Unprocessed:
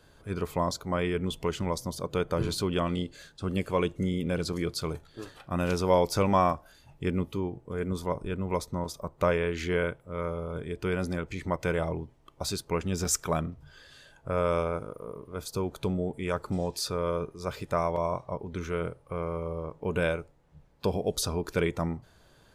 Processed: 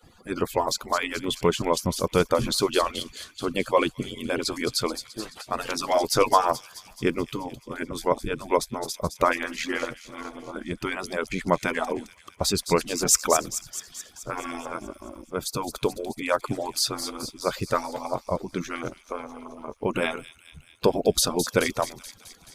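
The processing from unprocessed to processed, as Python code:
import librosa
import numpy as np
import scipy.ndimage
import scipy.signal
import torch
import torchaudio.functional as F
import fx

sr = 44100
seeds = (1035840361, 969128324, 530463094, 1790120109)

y = fx.hpss_only(x, sr, part='percussive')
y = fx.echo_wet_highpass(y, sr, ms=215, feedback_pct=64, hz=4100.0, wet_db=-7.5)
y = y * 10.0 ** (8.5 / 20.0)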